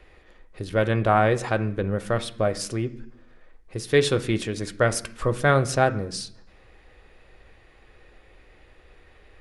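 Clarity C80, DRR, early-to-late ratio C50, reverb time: 19.5 dB, 8.0 dB, 16.0 dB, 0.70 s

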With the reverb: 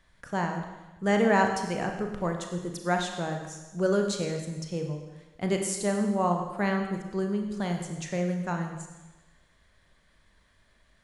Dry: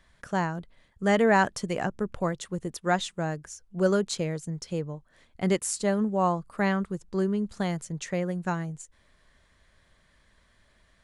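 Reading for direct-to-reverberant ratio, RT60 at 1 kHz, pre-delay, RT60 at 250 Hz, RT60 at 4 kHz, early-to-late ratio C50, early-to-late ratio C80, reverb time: 3.5 dB, 1.1 s, 31 ms, 1.1 s, 1.1 s, 5.5 dB, 7.0 dB, 1.1 s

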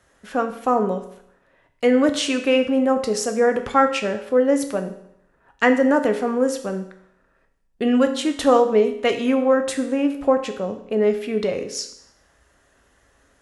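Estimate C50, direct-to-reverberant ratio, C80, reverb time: 10.5 dB, 6.0 dB, 13.0 dB, 0.75 s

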